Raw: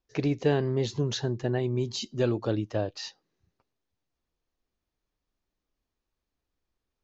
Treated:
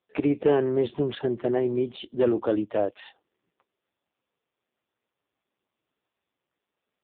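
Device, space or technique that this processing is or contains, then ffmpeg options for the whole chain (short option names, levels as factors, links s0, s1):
telephone: -af "highpass=260,lowpass=3500,asoftclip=type=tanh:threshold=0.119,volume=2.37" -ar 8000 -c:a libopencore_amrnb -b:a 5150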